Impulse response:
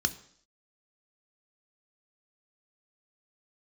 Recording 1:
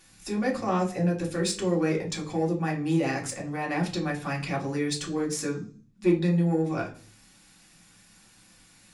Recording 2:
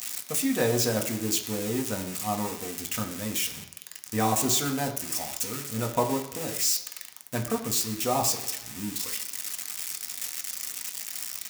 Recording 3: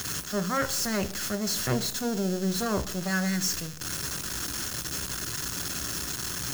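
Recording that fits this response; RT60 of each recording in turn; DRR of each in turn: 3; 0.45, 1.0, 0.60 s; -3.0, 2.5, 10.0 dB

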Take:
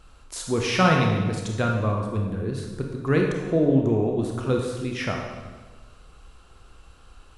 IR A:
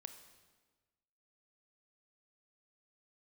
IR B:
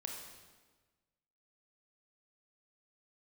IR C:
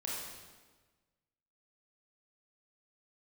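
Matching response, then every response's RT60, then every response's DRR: B; 1.3, 1.4, 1.4 s; 8.0, 0.5, -5.5 dB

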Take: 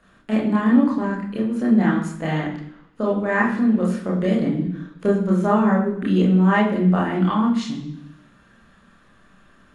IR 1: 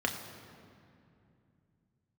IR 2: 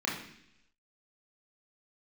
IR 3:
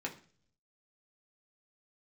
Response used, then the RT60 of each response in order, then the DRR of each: 2; 2.6, 0.70, 0.45 s; 2.0, -5.0, -1.0 dB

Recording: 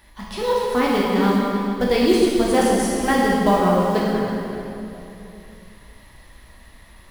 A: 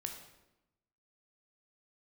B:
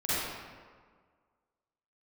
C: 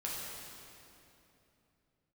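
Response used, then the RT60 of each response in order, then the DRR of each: C; 0.95, 1.7, 3.0 s; 3.5, -13.0, -5.5 dB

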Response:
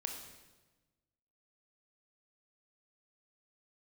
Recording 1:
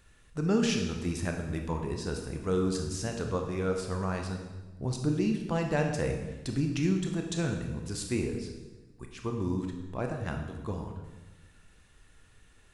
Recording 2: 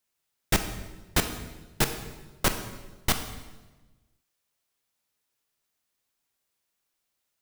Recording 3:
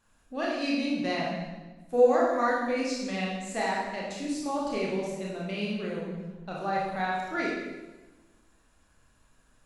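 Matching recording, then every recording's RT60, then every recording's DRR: 1; 1.2, 1.2, 1.2 s; 3.0, 7.0, -4.5 dB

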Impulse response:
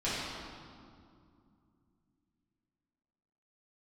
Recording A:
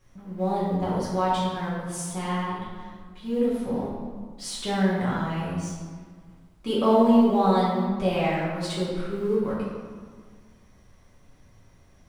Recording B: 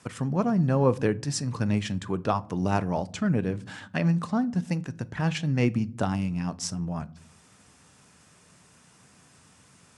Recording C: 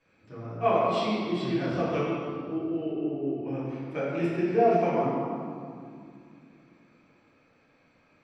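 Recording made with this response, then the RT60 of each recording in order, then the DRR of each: C; 1.7 s, not exponential, 2.4 s; -8.5, 14.5, -11.5 dB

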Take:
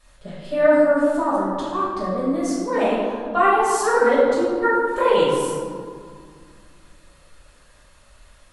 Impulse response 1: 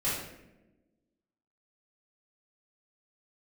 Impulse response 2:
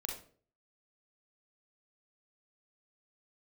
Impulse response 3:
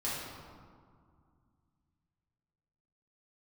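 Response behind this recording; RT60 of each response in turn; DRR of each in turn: 3; 1.0, 0.45, 2.1 s; -11.0, 0.0, -9.0 dB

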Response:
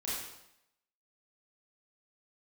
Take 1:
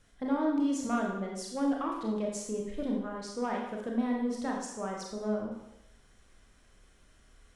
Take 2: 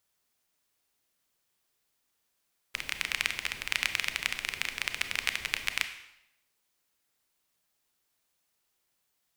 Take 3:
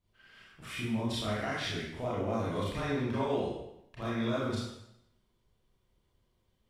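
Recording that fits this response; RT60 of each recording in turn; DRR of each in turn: 3; 0.80, 0.80, 0.80 s; -1.0, 8.5, -8.5 dB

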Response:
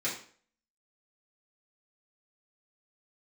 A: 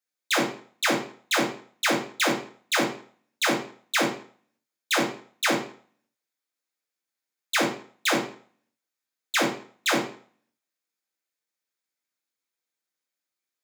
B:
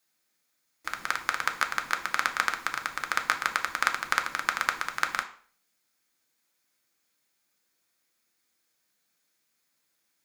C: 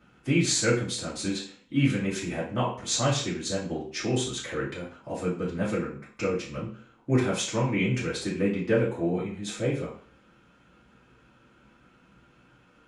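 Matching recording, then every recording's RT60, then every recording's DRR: C; 0.50, 0.50, 0.50 s; -1.5, 4.5, -8.5 dB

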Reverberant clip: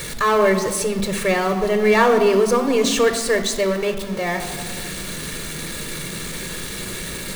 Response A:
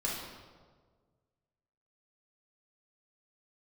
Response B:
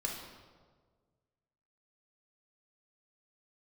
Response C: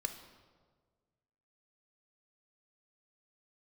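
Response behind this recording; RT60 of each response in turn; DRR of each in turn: C; 1.6, 1.6, 1.6 s; -5.0, -1.0, 6.5 dB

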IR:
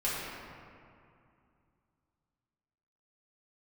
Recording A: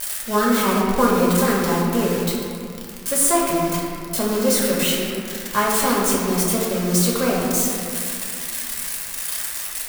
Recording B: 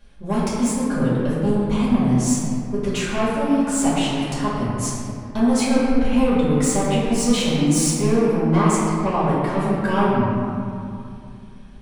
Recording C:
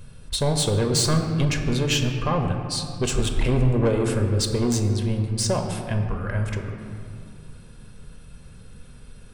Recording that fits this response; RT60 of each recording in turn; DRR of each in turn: B; 2.5, 2.5, 2.5 s; -5.0, -9.5, 3.5 dB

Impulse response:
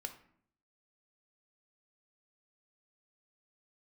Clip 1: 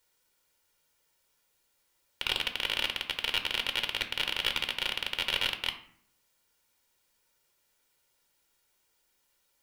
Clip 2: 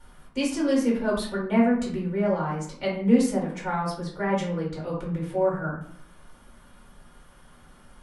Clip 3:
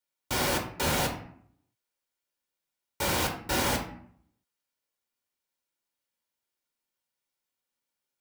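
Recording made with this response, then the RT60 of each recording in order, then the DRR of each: 1; 0.60, 0.60, 0.60 s; 6.0, -5.0, 1.0 dB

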